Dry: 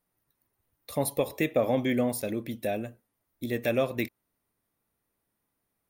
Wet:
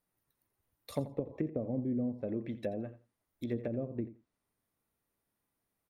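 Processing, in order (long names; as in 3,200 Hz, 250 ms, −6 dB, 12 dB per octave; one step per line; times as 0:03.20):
treble cut that deepens with the level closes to 310 Hz, closed at −24.5 dBFS
on a send: repeating echo 85 ms, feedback 16%, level −15 dB
on the sum: level −4 dB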